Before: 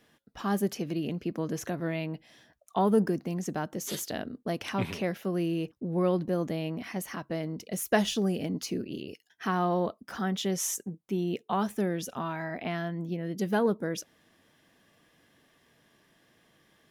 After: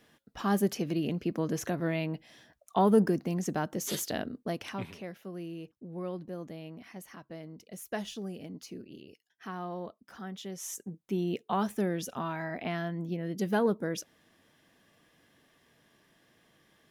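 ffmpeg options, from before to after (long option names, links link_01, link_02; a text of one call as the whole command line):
ffmpeg -i in.wav -af "volume=11dB,afade=type=out:start_time=4.22:duration=0.7:silence=0.251189,afade=type=in:start_time=10.6:duration=0.45:silence=0.316228" out.wav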